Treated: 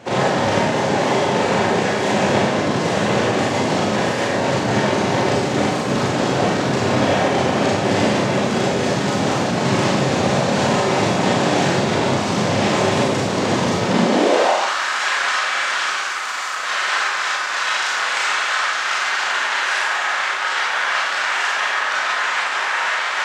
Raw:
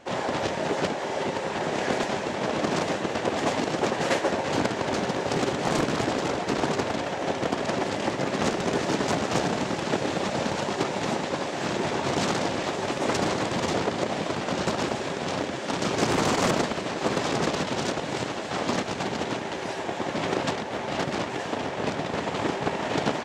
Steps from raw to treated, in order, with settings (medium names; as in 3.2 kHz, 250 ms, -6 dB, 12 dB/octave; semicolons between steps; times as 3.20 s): compressor with a negative ratio -30 dBFS, ratio -1; Schroeder reverb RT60 0.82 s, combs from 30 ms, DRR -5.5 dB; high-pass sweep 110 Hz -> 1.4 kHz, 13.86–14.78 s; trim +4.5 dB